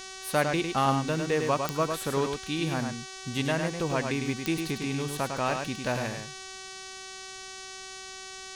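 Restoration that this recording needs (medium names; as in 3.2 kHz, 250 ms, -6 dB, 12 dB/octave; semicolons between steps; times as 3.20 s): de-click; de-hum 379.8 Hz, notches 18; noise print and reduce 30 dB; inverse comb 103 ms -5.5 dB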